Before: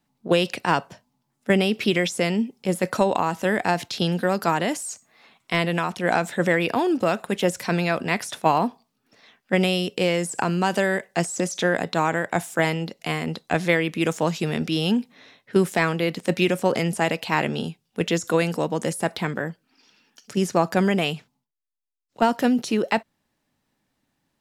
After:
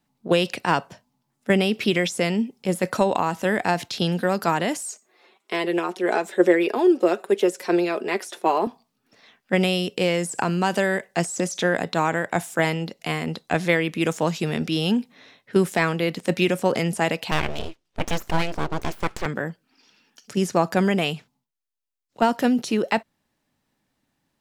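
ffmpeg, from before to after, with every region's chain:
-filter_complex "[0:a]asettb=1/sr,asplit=3[s0][s1][s2];[s0]atrim=end=4.914[s3];[s1]atrim=start=4.91:end=8.67,asetpts=PTS-STARTPTS,afade=t=in:d=0.004:c=qsin,afade=t=out:st=3.756:d=0.004:c=qsin,highpass=f=370:t=q:w=4,flanger=delay=4.7:depth=1:regen=37:speed=1.6:shape=sinusoidal[s4];[s2]atrim=start=8.666[s5];[s3][s4]acrossfade=d=0.004:c1=hsin:c2=qsin[s6];[s6][s5]acrossfade=d=0.004:c1=qsin:c2=hsin,asettb=1/sr,asplit=3[s7][s8][s9];[s7]atrim=end=17.314[s10];[s8]atrim=start=17.31:end=19.26,asetpts=PTS-STARTPTS,afade=t=in:d=0.004:c=qsin,afade=t=out:st=1.946:d=0.004:c=qsin,lowpass=5900,aeval=exprs='abs(val(0))':c=same[s11];[s9]atrim=start=19.256[s12];[s10][s11]acrossfade=d=0.004:c1=hsin:c2=qsin[s13];[s13][s12]acrossfade=d=0.004:c1=qsin:c2=hsin"

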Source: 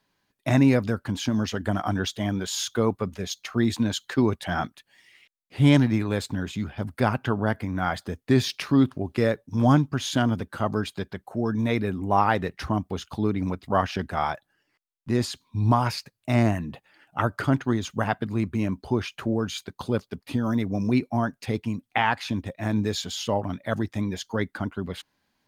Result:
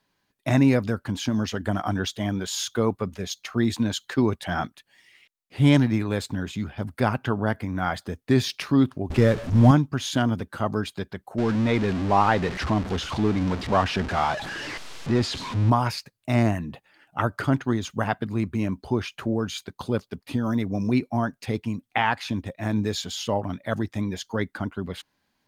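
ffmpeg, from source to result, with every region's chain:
-filter_complex "[0:a]asettb=1/sr,asplit=3[s0][s1][s2];[s0]atrim=end=9.104[s3];[s1]atrim=start=9.1:end=9.71,asetpts=PTS-STARTPTS,afade=t=in:d=0.004:c=qsin,afade=t=out:st=0.606:d=0.004:c=qsin,aeval=exprs='val(0)+0.5*0.0335*sgn(val(0))':c=same,lowshelf=f=140:g=12,adynamicsmooth=sensitivity=6:basefreq=3800[s4];[s2]atrim=start=9.706[s5];[s3][s4]acrossfade=d=0.004:c1=hsin:c2=qsin[s6];[s6][s5]acrossfade=d=0.004:c1=qsin:c2=hsin,asettb=1/sr,asplit=3[s7][s8][s9];[s7]atrim=end=11.384[s10];[s8]atrim=start=11.38:end=15.7,asetpts=PTS-STARTPTS,afade=t=in:d=0.004:c=qsin,afade=t=out:st=4.316:d=0.004:c=qsin,aeval=exprs='val(0)+0.5*0.0473*sgn(val(0))':c=same,lowpass=5100[s11];[s9]atrim=start=15.696[s12];[s10][s11]acrossfade=d=0.004:c1=hsin:c2=qsin[s13];[s13][s12]acrossfade=d=0.004:c1=qsin:c2=hsin"

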